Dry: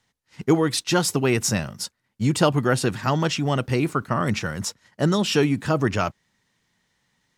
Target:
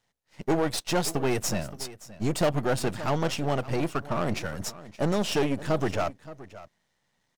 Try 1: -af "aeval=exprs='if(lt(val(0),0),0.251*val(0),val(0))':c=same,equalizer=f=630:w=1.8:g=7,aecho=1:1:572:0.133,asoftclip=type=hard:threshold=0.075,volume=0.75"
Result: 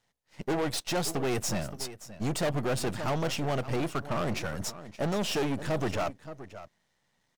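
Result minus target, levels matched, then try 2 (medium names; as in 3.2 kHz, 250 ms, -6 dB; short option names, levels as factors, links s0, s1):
hard clipper: distortion +8 dB
-af "aeval=exprs='if(lt(val(0),0),0.251*val(0),val(0))':c=same,equalizer=f=630:w=1.8:g=7,aecho=1:1:572:0.133,asoftclip=type=hard:threshold=0.168,volume=0.75"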